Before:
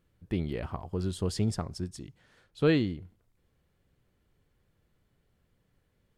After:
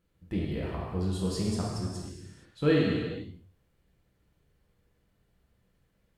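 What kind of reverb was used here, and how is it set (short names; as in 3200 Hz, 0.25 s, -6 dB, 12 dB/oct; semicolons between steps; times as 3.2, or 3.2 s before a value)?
non-linear reverb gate 0.5 s falling, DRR -4.5 dB; gain -4.5 dB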